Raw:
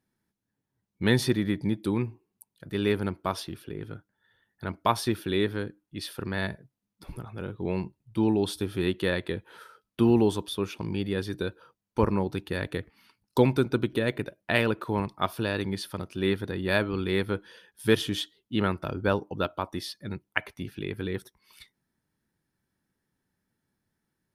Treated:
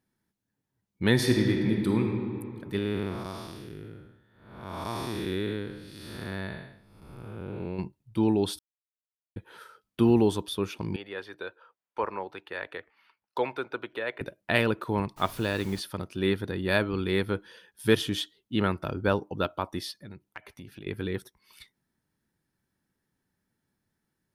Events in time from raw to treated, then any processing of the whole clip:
0:01.11–0:02.03: thrown reverb, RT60 2.4 s, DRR 1.5 dB
0:02.78–0:07.79: spectrum smeared in time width 345 ms
0:08.59–0:09.36: silence
0:10.96–0:14.21: three-way crossover with the lows and the highs turned down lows −23 dB, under 480 Hz, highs −17 dB, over 3,200 Hz
0:15.16–0:15.79: background noise pink −48 dBFS
0:19.91–0:20.87: downward compressor 4 to 1, threshold −41 dBFS

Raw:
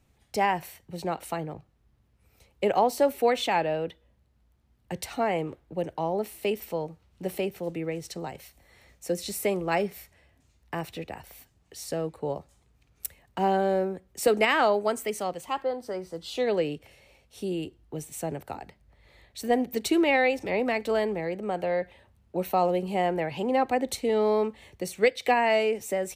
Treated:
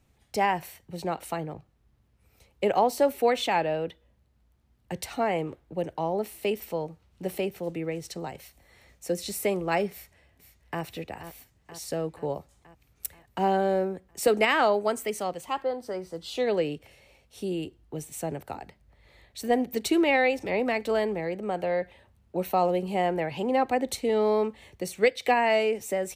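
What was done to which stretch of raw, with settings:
0:09.91–0:10.82: delay throw 480 ms, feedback 65%, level −11 dB

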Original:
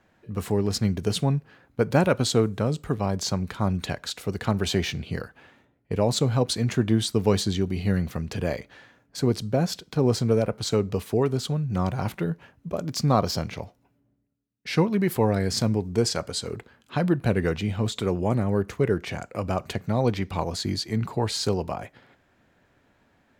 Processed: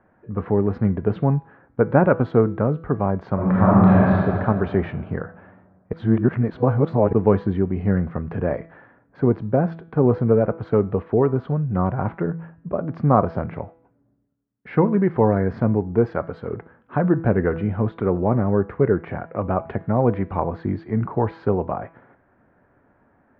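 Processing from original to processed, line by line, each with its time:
0:03.34–0:04.15: thrown reverb, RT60 2.4 s, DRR −8.5 dB
0:05.93–0:07.13: reverse
whole clip: low-pass filter 1,600 Hz 24 dB per octave; low-shelf EQ 110 Hz −4.5 dB; hum removal 164.8 Hz, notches 28; level +5.5 dB

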